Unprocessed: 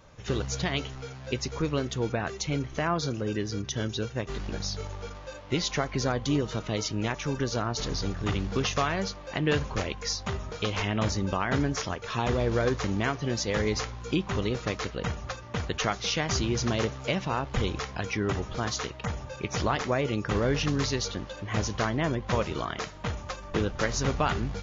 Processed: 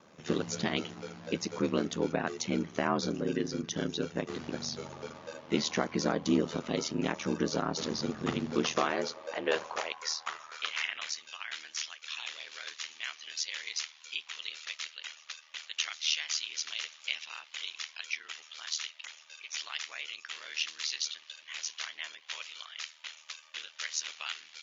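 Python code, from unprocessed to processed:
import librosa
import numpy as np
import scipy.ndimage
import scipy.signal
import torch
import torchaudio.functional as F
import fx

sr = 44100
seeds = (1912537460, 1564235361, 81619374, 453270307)

y = x * np.sin(2.0 * np.pi * 39.0 * np.arange(len(x)) / sr)
y = fx.filter_sweep_highpass(y, sr, from_hz=220.0, to_hz=2800.0, start_s=8.48, end_s=11.29, q=1.5)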